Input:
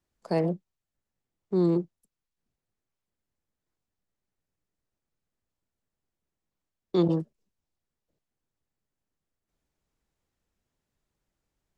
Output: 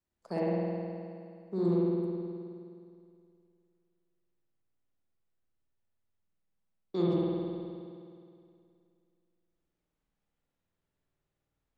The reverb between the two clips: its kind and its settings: spring tank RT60 2.4 s, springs 52 ms, chirp 20 ms, DRR -6 dB; trim -9.5 dB

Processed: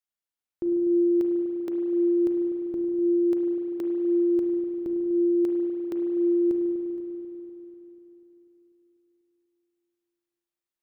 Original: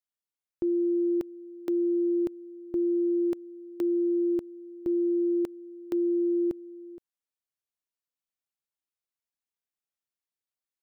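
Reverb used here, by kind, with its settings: spring tank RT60 3.6 s, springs 35/49 ms, chirp 55 ms, DRR 1.5 dB; trim -1 dB

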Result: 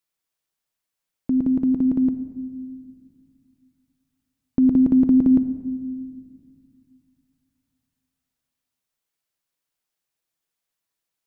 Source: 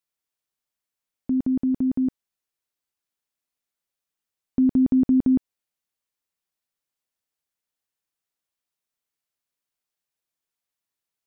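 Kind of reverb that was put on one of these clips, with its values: simulated room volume 3200 m³, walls mixed, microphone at 0.64 m; trim +3 dB

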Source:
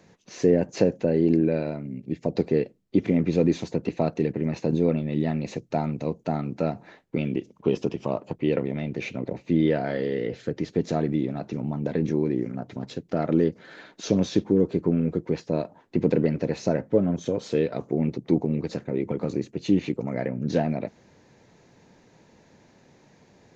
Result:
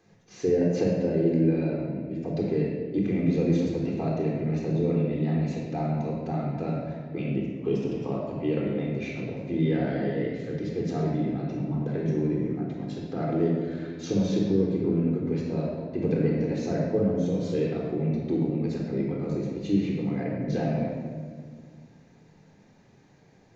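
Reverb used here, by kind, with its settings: simulated room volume 2300 m³, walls mixed, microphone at 3.8 m; trim -9.5 dB

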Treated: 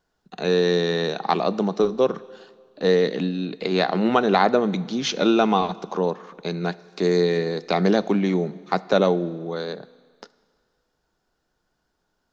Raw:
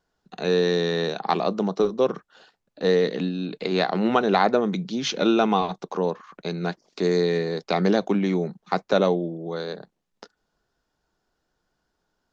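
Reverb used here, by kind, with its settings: Schroeder reverb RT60 1.9 s, combs from 25 ms, DRR 18.5 dB; trim +1.5 dB

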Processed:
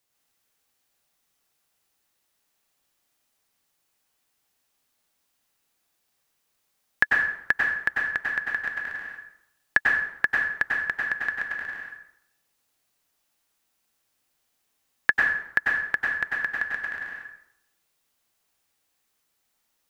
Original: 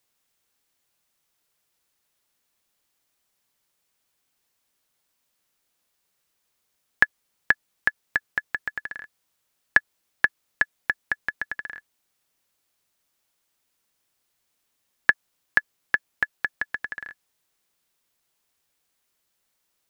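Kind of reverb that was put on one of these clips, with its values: plate-style reverb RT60 0.73 s, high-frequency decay 0.75×, pre-delay 85 ms, DRR -2.5 dB; trim -3 dB

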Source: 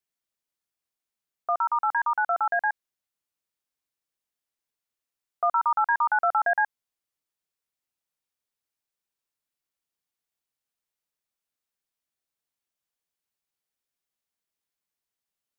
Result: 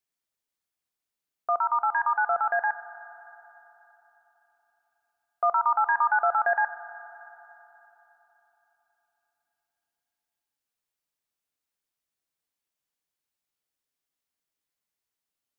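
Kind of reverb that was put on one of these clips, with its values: FDN reverb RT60 3.7 s, high-frequency decay 0.85×, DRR 11 dB

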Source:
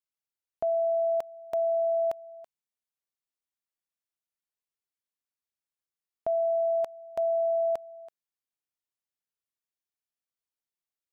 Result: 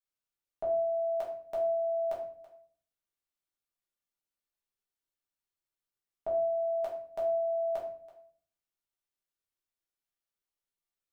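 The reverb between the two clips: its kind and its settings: simulated room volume 57 m³, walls mixed, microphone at 1.2 m; trim -6.5 dB

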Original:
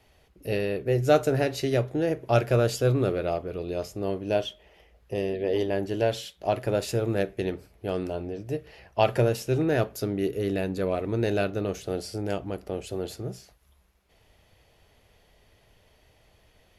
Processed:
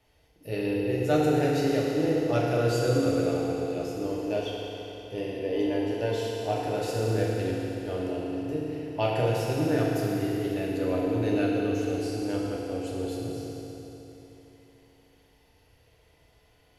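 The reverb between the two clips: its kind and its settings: FDN reverb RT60 3.6 s, high-frequency decay 0.95×, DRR -5 dB; trim -7.5 dB

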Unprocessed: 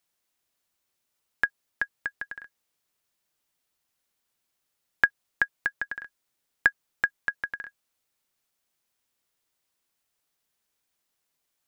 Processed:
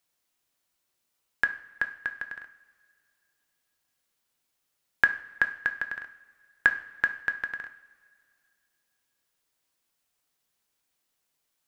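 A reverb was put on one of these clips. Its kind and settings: two-slope reverb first 0.49 s, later 2.4 s, from -18 dB, DRR 7.5 dB

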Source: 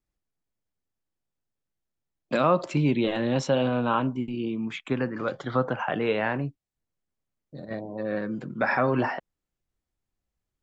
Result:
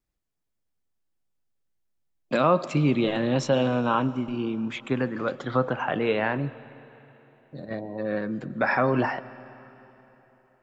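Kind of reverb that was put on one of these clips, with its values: algorithmic reverb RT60 3.6 s, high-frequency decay 0.9×, pre-delay 80 ms, DRR 17.5 dB; trim +1 dB

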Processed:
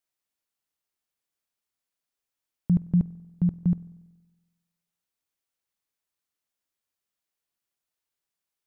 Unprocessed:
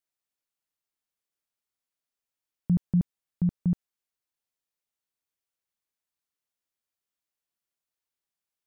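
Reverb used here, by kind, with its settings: spring tank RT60 1.2 s, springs 47 ms, chirp 45 ms, DRR 18 dB; trim +2 dB

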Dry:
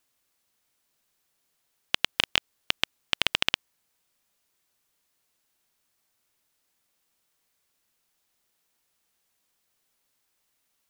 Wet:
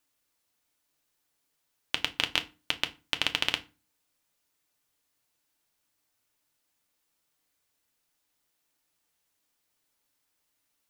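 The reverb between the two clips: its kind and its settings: FDN reverb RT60 0.3 s, low-frequency decay 1.45×, high-frequency decay 0.8×, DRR 6.5 dB; trim -3.5 dB

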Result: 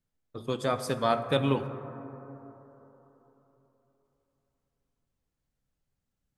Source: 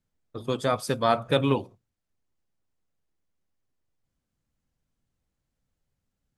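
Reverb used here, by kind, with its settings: plate-style reverb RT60 3.7 s, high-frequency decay 0.25×, DRR 9.5 dB; trim -3.5 dB

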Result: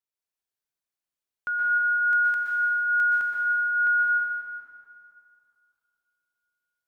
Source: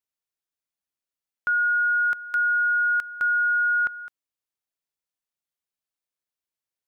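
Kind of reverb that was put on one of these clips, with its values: plate-style reverb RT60 2.5 s, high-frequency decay 0.75×, pre-delay 110 ms, DRR -4 dB; trim -5.5 dB

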